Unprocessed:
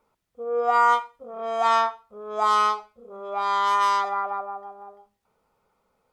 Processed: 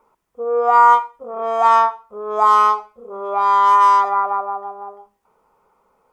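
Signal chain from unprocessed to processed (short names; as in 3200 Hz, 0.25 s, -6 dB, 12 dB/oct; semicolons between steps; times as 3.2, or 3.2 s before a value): fifteen-band EQ 100 Hz -6 dB, 400 Hz +5 dB, 1000 Hz +9 dB, 4000 Hz -6 dB; in parallel at -3 dB: compressor, threshold -25 dBFS, peak gain reduction 16 dB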